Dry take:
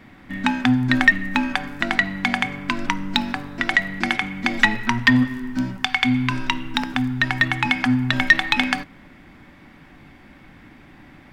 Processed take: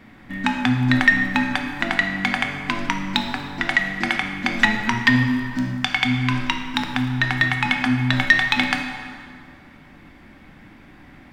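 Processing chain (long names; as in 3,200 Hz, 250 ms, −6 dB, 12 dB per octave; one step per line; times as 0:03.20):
dense smooth reverb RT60 2.2 s, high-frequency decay 0.7×, DRR 4.5 dB
level −1 dB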